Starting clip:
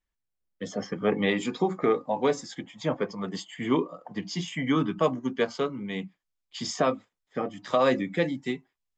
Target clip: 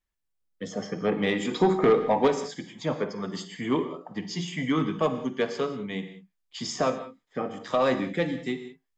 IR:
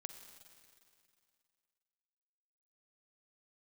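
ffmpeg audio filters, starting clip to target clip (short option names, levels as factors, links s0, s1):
-filter_complex "[0:a]asettb=1/sr,asplit=3[s0][s1][s2];[s0]atrim=end=1.514[s3];[s1]atrim=start=1.51:end=2.28,asetpts=PTS-STARTPTS,afade=t=in:d=0.004:c=qsin,afade=t=out:st=0.766:d=0.004:c=qsin,acontrast=70[s4];[s2]atrim=start=2.276[s5];[s3][s4]acrossfade=d=0.004:c1=hsin:c2=qsin[s6];[s6][s5]acrossfade=d=0.004:c1=qsin:c2=hsin,asoftclip=type=tanh:threshold=0.237[s7];[1:a]atrim=start_sample=2205,afade=t=out:st=0.25:d=0.01,atrim=end_sample=11466[s8];[s7][s8]afir=irnorm=-1:irlink=0,volume=1.68"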